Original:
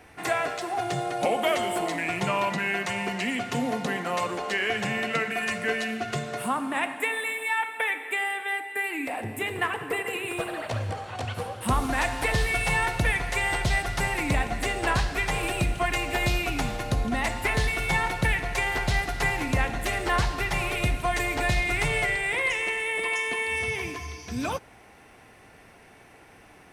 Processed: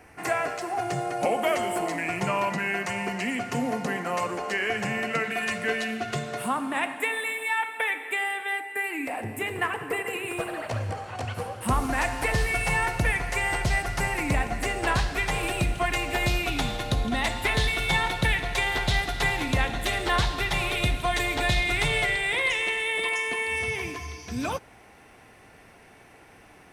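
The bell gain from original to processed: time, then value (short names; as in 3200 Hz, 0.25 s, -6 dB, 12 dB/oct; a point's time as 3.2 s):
bell 3600 Hz 0.38 oct
-10 dB
from 5.24 s +0.5 dB
from 8.61 s -6 dB
from 14.84 s +1 dB
from 16.47 s +9.5 dB
from 23.09 s -0.5 dB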